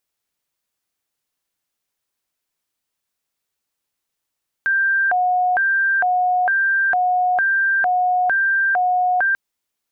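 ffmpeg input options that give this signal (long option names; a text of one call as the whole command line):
ffmpeg -f lavfi -i "aevalsrc='0.188*sin(2*PI*(1153.5*t+426.5/1.1*(0.5-abs(mod(1.1*t,1)-0.5))))':duration=4.69:sample_rate=44100" out.wav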